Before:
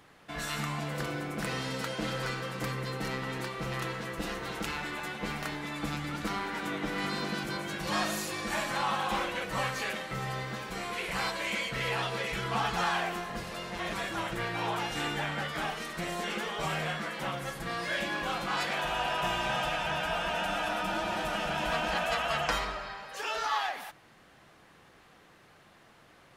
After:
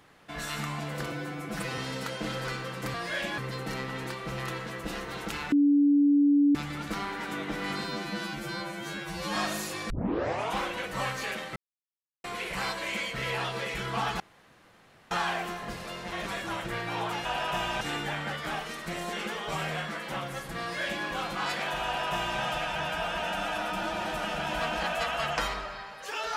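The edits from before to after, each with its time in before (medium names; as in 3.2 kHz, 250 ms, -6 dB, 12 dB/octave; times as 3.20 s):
1.12–1.56 s: stretch 1.5×
4.86–5.89 s: bleep 287 Hz -18 dBFS
7.18–7.94 s: stretch 2×
8.48 s: tape start 0.67 s
10.14–10.82 s: mute
12.78 s: insert room tone 0.91 s
17.72–18.16 s: copy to 2.72 s
18.95–19.51 s: copy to 14.92 s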